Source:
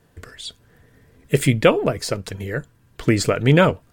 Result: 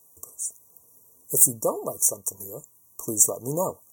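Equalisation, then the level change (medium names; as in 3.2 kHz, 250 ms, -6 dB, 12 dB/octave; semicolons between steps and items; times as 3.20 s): brick-wall FIR band-stop 1.2–5.6 kHz; tilt EQ +4.5 dB/octave; treble shelf 7 kHz +8.5 dB; -6.0 dB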